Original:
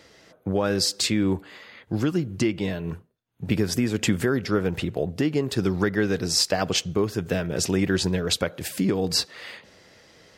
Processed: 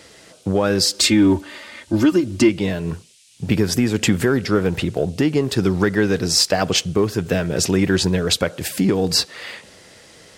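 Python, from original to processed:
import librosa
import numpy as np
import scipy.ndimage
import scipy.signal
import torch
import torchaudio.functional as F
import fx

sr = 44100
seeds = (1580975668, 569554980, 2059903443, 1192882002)

p1 = fx.comb(x, sr, ms=3.3, depth=0.93, at=(0.94, 2.49))
p2 = fx.dmg_noise_band(p1, sr, seeds[0], low_hz=2400.0, high_hz=9800.0, level_db=-59.0)
p3 = 10.0 ** (-19.0 / 20.0) * np.tanh(p2 / 10.0 ** (-19.0 / 20.0))
p4 = p2 + (p3 * librosa.db_to_amplitude(-9.0))
y = p4 * librosa.db_to_amplitude(3.5)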